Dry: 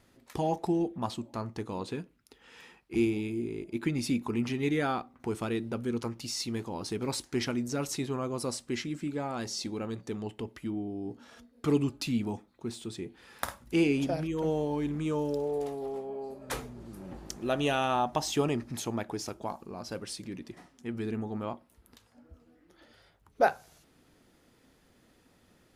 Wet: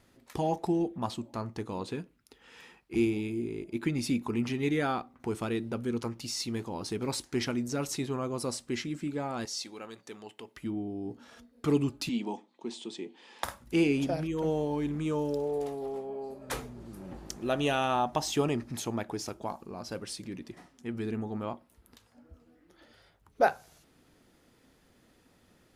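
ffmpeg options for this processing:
-filter_complex "[0:a]asettb=1/sr,asplit=3[a][b][c];[a]atrim=end=9.454[d];[b]atrim=start=9.45:end=10.57,asetpts=PTS-STARTPTS,afade=t=in:d=0.004:c=qsin,afade=t=out:st=1.116:d=0.004:c=qsin,highpass=f=960:p=1[e];[c]atrim=start=10.566[f];[d][e]acrossfade=d=0.004:c1=hsin:c2=qsin[g];[g][f]acrossfade=d=0.004:c1=qsin:c2=hsin,asettb=1/sr,asplit=3[h][i][j];[h]atrim=end=12.094[k];[i]atrim=start=12.09:end=13.44,asetpts=PTS-STARTPTS,afade=t=in:d=0.004:c=qsin,afade=t=out:st=1.346:d=0.004:c=qsin,highpass=f=220:w=0.5412,highpass=f=220:w=1.3066,equalizer=f=910:t=q:w=4:g=6,equalizer=f=1.4k:t=q:w=4:g=-9,equalizer=f=3.1k:t=q:w=4:g=6,lowpass=f=8k:w=0.5412,lowpass=f=8k:w=1.3066[l];[j]atrim=start=13.436[m];[k][l]acrossfade=d=0.004:c1=hsin:c2=qsin[n];[n][m]acrossfade=d=0.004:c1=qsin:c2=hsin"

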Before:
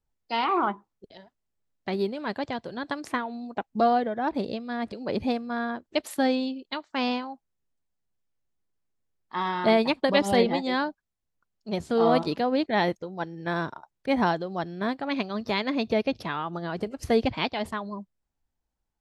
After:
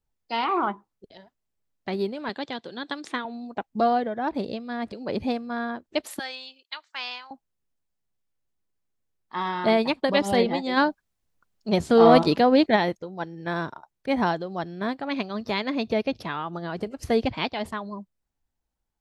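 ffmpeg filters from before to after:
-filter_complex "[0:a]asettb=1/sr,asplit=3[a][b][c];[a]atrim=end=2.294[d];[b]atrim=start=2.29:end=3.25,asetpts=PTS-STARTPTS,afade=t=in:d=0.004:c=qsin,afade=t=out:st=0.956:d=0.004:c=qsin,highpass=210,equalizer=f=640:t=q:w=4:g=-6,equalizer=f=1k:t=q:w=4:g=-3,equalizer=f=3.6k:t=q:w=4:g=9,lowpass=f=9.3k:w=0.5412,lowpass=f=9.3k:w=1.3066[e];[c]atrim=start=3.246[f];[d][e]acrossfade=d=0.004:c1=hsin:c2=qsin[g];[g][f]acrossfade=d=0.004:c1=qsin:c2=hsin,asettb=1/sr,asplit=3[h][i][j];[h]atrim=end=6.194[k];[i]atrim=start=6.19:end=7.31,asetpts=PTS-STARTPTS,afade=t=in:d=0.004:c=qsin,afade=t=out:st=1.116:d=0.004:c=qsin,highpass=1.4k[l];[j]atrim=start=7.306[m];[k][l]acrossfade=d=0.004:c1=hsin:c2=qsin[n];[n][m]acrossfade=d=0.004:c1=qsin:c2=hsin,asplit=3[o][p][q];[o]afade=t=out:st=10.76:d=0.02[r];[p]acontrast=87,afade=t=in:st=10.76:d=0.02,afade=t=out:st=12.75:d=0.02[s];[q]afade=t=in:st=12.75:d=0.02[t];[r][s][t]amix=inputs=3:normalize=0"

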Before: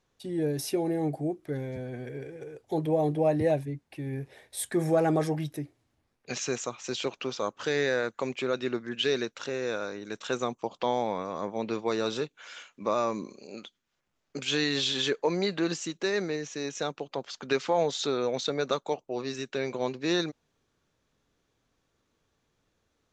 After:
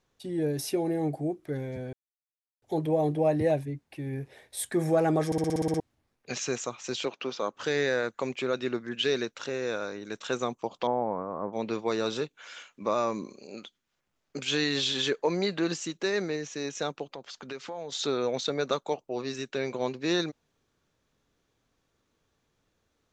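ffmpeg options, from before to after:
-filter_complex "[0:a]asettb=1/sr,asplit=3[a][b][c];[a]atrim=end=7.054[d];[b]atrim=start=7.05:end=7.54,asetpts=PTS-STARTPTS,afade=t=in:d=0.004:c=qsin,afade=t=out:st=0.486:d=0.004:c=qsin,highpass=180,lowpass=5.5k[e];[c]atrim=start=7.536[f];[d][e]acrossfade=d=0.004:c1=hsin:c2=qsin[g];[g][f]acrossfade=d=0.004:c1=qsin:c2=hsin,asettb=1/sr,asplit=3[h][i][j];[h]atrim=end=10.874[k];[i]atrim=start=10.87:end=11.53,asetpts=PTS-STARTPTS,afade=t=in:d=0.004:c=qsin,afade=t=out:st=0.656:d=0.004:c=qsin,lowpass=f=1.4k:w=0.5412,lowpass=f=1.4k:w=1.3066[l];[j]atrim=start=11.526[m];[k][l]acrossfade=d=0.004:c1=hsin:c2=qsin[n];[n][m]acrossfade=d=0.004:c1=qsin:c2=hsin,asettb=1/sr,asplit=3[o][p][q];[o]atrim=end=17.094[r];[p]atrim=start=17.09:end=17.92,asetpts=PTS-STARTPTS,afade=t=in:d=0.004:c=qsin,afade=t=out:st=0.826:d=0.004:c=qsin,acompressor=threshold=-40dB:ratio=2.5:attack=3.2:release=140:knee=1:detection=peak[s];[q]atrim=start=17.916[t];[r][s]acrossfade=d=0.004:c1=hsin:c2=qsin[u];[u][t]acrossfade=d=0.004:c1=qsin:c2=hsin,asplit=12[v][w][x][y][z][aa][ab][ac][ad][ae][af][ag];[v]atrim=end=1.93,asetpts=PTS-STARTPTS,afade=t=out:st=1.926:d=0.004:c=hsin[ah];[w]atrim=start=1.93:end=2.62,asetpts=PTS-STARTPTS,volume=0[ai];[x]atrim=start=2.62:end=5.322,asetpts=PTS-STARTPTS,afade=t=in:d=0.004:c=hsin[aj];[y]atrim=start=5.258:end=5.322[ak];[z]atrim=start=5.258:end=5.322[al];[aa]atrim=start=5.258:end=5.322[am];[ab]atrim=start=5.258:end=5.322[an];[ac]atrim=start=5.258:end=5.322[ao];[ad]atrim=start=5.258:end=5.322[ap];[ae]atrim=start=5.258:end=5.322[aq];[af]atrim=start=5.258:end=5.322[ar];[ag]atrim=start=5.798[as];[ah][ai][aj]concat=n=3:v=0:a=1[at];[at][ak]acrossfade=d=0.004:c1=hsin:c2=hsin[au];[au][al]acrossfade=d=0.004:c1=hsin:c2=hsin[av];[av][am]acrossfade=d=0.004:c1=hsin:c2=hsin[aw];[aw][an]acrossfade=d=0.004:c1=hsin:c2=hsin[ax];[ax][ao]acrossfade=d=0.004:c1=hsin:c2=hsin[ay];[ay][ap]acrossfade=d=0.004:c1=hsin:c2=hsin[az];[az][aq]acrossfade=d=0.004:c1=hsin:c2=hsin[ba];[ba][ar]acrossfade=d=0.004:c1=hsin:c2=hsin[bb];[bb][as]acrossfade=d=0.004:c1=hsin:c2=hsin"

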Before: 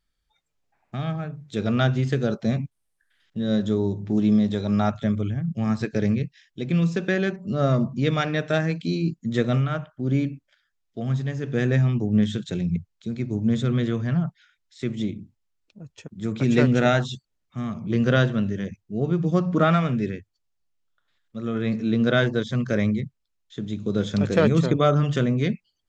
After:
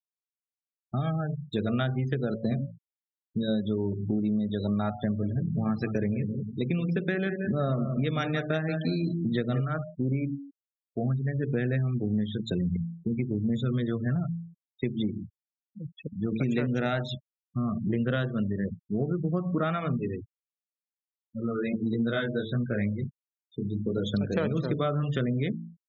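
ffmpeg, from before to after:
-filter_complex "[0:a]asettb=1/sr,asplit=3[a][b][c];[a]atrim=end=4.964[d];[b]atrim=start=4.96:end=9.61,asetpts=PTS-STARTPTS,afade=t=in:d=0.004:c=qsin,afade=t=out:st=4.646:d=0.004:c=qsin,asplit=2[e][f];[f]adelay=180,lowpass=f=4.7k:p=1,volume=-9.5dB,asplit=2[g][h];[h]adelay=180,lowpass=f=4.7k:p=1,volume=0.33,asplit=2[i][j];[j]adelay=180,lowpass=f=4.7k:p=1,volume=0.33,asplit=2[k][l];[l]adelay=180,lowpass=f=4.7k:p=1,volume=0.33[m];[e][g][i][k][m]amix=inputs=5:normalize=0,atrim=end_sample=205065[n];[c]atrim=start=9.606[o];[d][n]acrossfade=d=0.004:c1=hsin:c2=qsin[p];[p][o]acrossfade=d=0.004:c1=qsin:c2=hsin,asplit=3[q][r][s];[q]afade=t=out:st=19.92:d=0.02[t];[r]flanger=delay=16.5:depth=4.6:speed=1.5,afade=t=in:st=19.92:d=0.02,afade=t=out:st=24.04:d=0.02[u];[s]afade=t=in:st=24.04:d=0.02[v];[t][u][v]amix=inputs=3:normalize=0,bandreject=f=56.06:t=h:w=4,bandreject=f=112.12:t=h:w=4,bandreject=f=168.18:t=h:w=4,bandreject=f=224.24:t=h:w=4,bandreject=f=280.3:t=h:w=4,bandreject=f=336.36:t=h:w=4,bandreject=f=392.42:t=h:w=4,bandreject=f=448.48:t=h:w=4,bandreject=f=504.54:t=h:w=4,bandreject=f=560.6:t=h:w=4,bandreject=f=616.66:t=h:w=4,bandreject=f=672.72:t=h:w=4,bandreject=f=728.78:t=h:w=4,bandreject=f=784.84:t=h:w=4,bandreject=f=840.9:t=h:w=4,bandreject=f=896.96:t=h:w=4,bandreject=f=953.02:t=h:w=4,bandreject=f=1.00908k:t=h:w=4,bandreject=f=1.06514k:t=h:w=4,bandreject=f=1.1212k:t=h:w=4,bandreject=f=1.17726k:t=h:w=4,bandreject=f=1.23332k:t=h:w=4,afftfilt=real='re*gte(hypot(re,im),0.0251)':imag='im*gte(hypot(re,im),0.0251)':win_size=1024:overlap=0.75,acompressor=threshold=-29dB:ratio=6,volume=4dB"

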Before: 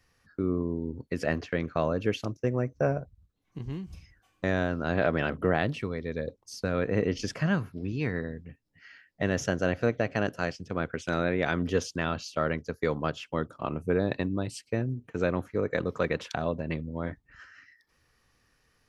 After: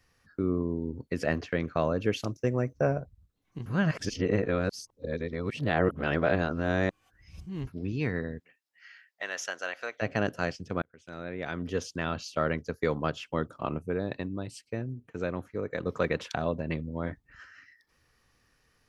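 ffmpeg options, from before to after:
-filter_complex "[0:a]asettb=1/sr,asplit=3[a][b][c];[a]atrim=end=2.164[d];[b]atrim=start=2.16:end=2.73,asetpts=PTS-STARTPTS,afade=t=in:d=0.004:c=qsin,afade=t=out:st=0.566:d=0.004:c=qsin,highshelf=f=4k:g=6.5[e];[c]atrim=start=2.726[f];[d][e]acrossfade=d=0.004:c1=hsin:c2=qsin[g];[g][f]acrossfade=d=0.004:c1=qsin:c2=hsin,asplit=3[h][i][j];[h]afade=t=out:st=8.38:d=0.02[k];[i]highpass=1k,afade=t=in:st=8.38:d=0.02,afade=t=out:st=10.01:d=0.02[l];[j]afade=t=in:st=10.01:d=0.02[m];[k][l][m]amix=inputs=3:normalize=0,asplit=6[n][o][p][q][r][s];[n]atrim=end=3.662[t];[o]atrim=start=3.658:end=7.672,asetpts=PTS-STARTPTS,areverse[u];[p]atrim=start=7.668:end=10.82,asetpts=PTS-STARTPTS,afade=t=out:st=3.148:d=0.004:c=hsin[v];[q]atrim=start=10.82:end=13.792,asetpts=PTS-STARTPTS,afade=t=in:d=1.54[w];[r]atrim=start=13.788:end=15.862,asetpts=PTS-STARTPTS,volume=-5dB[x];[s]atrim=start=15.858[y];[t][u]acrossfade=d=0.004:c1=hsin:c2=hsin[z];[v][w]concat=n=2:v=0:a=1[aa];[z][aa]acrossfade=d=0.004:c1=hsin:c2=hsin[ab];[ab][x]acrossfade=d=0.004:c1=hsin:c2=hsin[ac];[ac][y]acrossfade=d=0.004:c1=hsin:c2=hsin"

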